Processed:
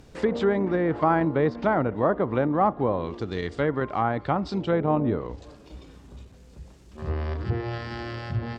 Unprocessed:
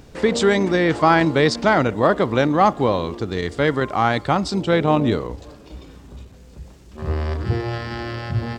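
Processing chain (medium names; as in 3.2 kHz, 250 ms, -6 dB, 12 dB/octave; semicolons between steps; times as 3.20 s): low-pass that closes with the level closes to 1.3 kHz, closed at -14 dBFS; trim -5.5 dB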